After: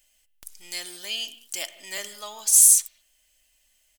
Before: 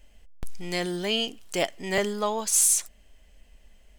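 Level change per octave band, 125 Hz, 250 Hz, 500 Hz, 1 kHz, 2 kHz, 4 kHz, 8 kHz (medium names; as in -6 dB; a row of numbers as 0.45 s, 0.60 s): under -20 dB, under -20 dB, -16.0 dB, -12.0 dB, -5.0 dB, -1.0 dB, +6.0 dB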